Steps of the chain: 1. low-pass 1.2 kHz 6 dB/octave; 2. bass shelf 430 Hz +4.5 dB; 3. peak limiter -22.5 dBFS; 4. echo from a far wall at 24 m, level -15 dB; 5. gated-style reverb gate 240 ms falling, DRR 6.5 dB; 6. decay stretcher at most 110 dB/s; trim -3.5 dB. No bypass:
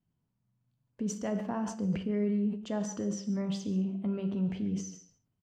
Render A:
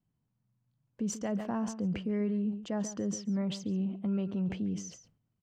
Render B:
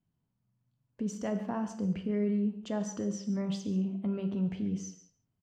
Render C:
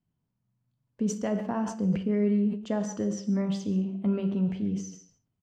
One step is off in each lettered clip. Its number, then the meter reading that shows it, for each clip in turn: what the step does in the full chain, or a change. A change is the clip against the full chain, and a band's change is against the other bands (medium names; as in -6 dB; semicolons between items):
5, momentary loudness spread change -2 LU; 6, 8 kHz band -2.0 dB; 3, mean gain reduction 2.5 dB